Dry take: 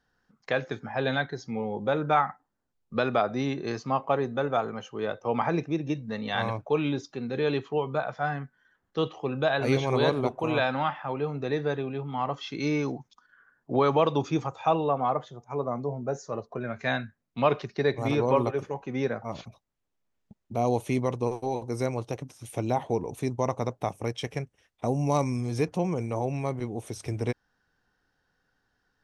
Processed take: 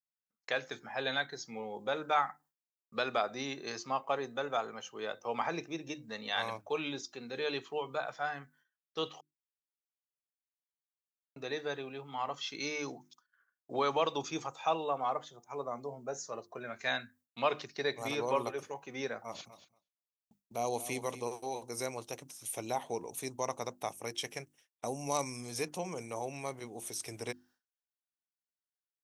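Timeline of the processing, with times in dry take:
9.21–11.36 s: mute
19.26–21.28 s: feedback delay 234 ms, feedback 23%, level -14 dB
whole clip: hum notches 50/100/150/200/250/300/350 Hz; expander -51 dBFS; RIAA curve recording; trim -6 dB

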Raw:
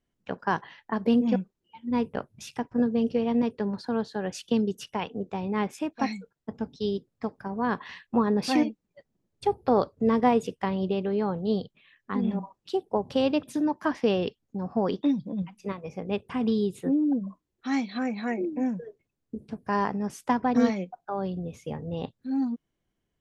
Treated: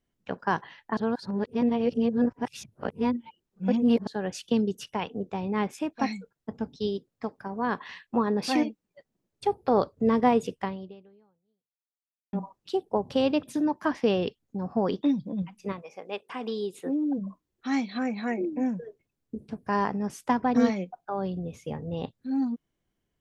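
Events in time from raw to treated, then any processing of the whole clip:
0.97–4.07 s: reverse
6.87–9.74 s: bass shelf 170 Hz -7 dB
10.61–12.33 s: fade out exponential
15.81–17.17 s: high-pass 660 Hz -> 270 Hz

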